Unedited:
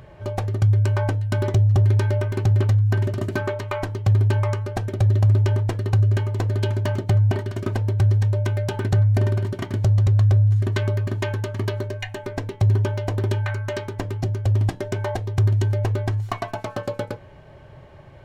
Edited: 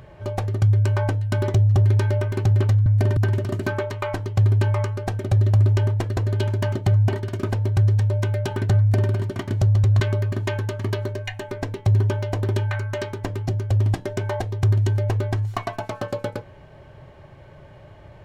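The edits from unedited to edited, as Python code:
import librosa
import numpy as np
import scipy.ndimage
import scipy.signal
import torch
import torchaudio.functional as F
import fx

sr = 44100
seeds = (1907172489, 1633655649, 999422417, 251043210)

y = fx.edit(x, sr, fx.cut(start_s=5.86, length_s=0.54),
    fx.duplicate(start_s=9.02, length_s=0.31, to_s=2.86),
    fx.cut(start_s=10.23, length_s=0.52), tone=tone)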